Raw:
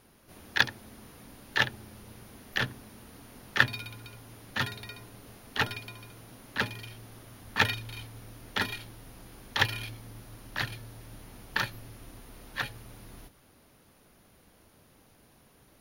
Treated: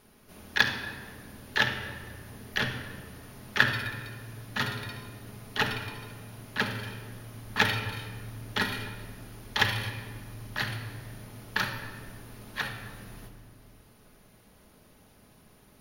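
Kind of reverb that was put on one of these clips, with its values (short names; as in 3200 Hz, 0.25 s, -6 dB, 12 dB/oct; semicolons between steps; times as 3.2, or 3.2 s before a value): shoebox room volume 2100 m³, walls mixed, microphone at 1.4 m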